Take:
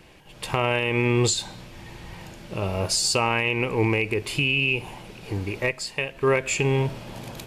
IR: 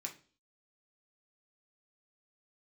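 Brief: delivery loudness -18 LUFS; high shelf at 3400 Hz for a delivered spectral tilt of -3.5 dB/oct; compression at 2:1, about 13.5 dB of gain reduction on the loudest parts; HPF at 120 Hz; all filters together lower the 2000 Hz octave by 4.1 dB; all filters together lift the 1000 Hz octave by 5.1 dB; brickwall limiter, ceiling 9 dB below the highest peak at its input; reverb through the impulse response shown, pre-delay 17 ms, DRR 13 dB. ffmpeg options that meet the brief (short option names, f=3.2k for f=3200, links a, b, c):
-filter_complex "[0:a]highpass=120,equalizer=f=1k:t=o:g=8,equalizer=f=2k:t=o:g=-9,highshelf=f=3.4k:g=3.5,acompressor=threshold=-41dB:ratio=2,alimiter=level_in=1dB:limit=-24dB:level=0:latency=1,volume=-1dB,asplit=2[a][b];[1:a]atrim=start_sample=2205,adelay=17[c];[b][c]afir=irnorm=-1:irlink=0,volume=-11dB[d];[a][d]amix=inputs=2:normalize=0,volume=19.5dB"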